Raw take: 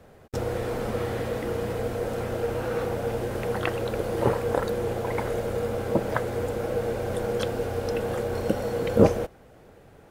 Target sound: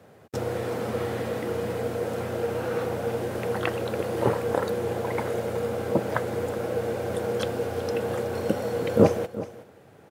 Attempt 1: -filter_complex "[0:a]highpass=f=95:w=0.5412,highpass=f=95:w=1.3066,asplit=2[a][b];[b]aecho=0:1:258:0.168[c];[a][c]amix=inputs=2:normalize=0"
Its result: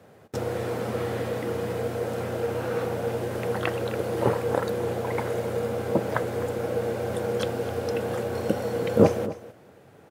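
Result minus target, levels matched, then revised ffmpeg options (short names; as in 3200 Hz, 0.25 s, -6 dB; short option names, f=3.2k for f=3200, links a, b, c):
echo 0.114 s early
-filter_complex "[0:a]highpass=f=95:w=0.5412,highpass=f=95:w=1.3066,asplit=2[a][b];[b]aecho=0:1:372:0.168[c];[a][c]amix=inputs=2:normalize=0"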